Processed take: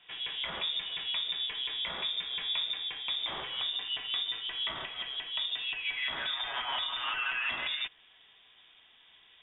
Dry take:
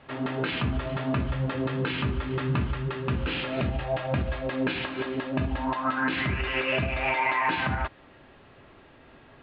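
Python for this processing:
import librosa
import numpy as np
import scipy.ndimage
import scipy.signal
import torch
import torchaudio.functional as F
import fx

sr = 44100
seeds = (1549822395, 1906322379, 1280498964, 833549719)

y = fx.freq_invert(x, sr, carrier_hz=3600)
y = y * librosa.db_to_amplitude(-7.5)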